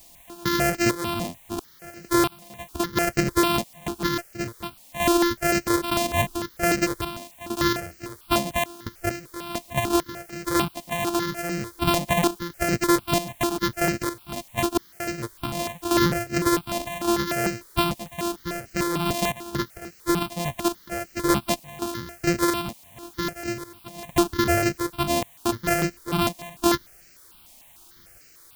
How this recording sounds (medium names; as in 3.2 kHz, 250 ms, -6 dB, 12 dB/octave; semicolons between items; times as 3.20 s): a buzz of ramps at a fixed pitch in blocks of 128 samples; random-step tremolo 4.4 Hz, depth 100%; a quantiser's noise floor 10-bit, dither triangular; notches that jump at a steady rate 6.7 Hz 390–3500 Hz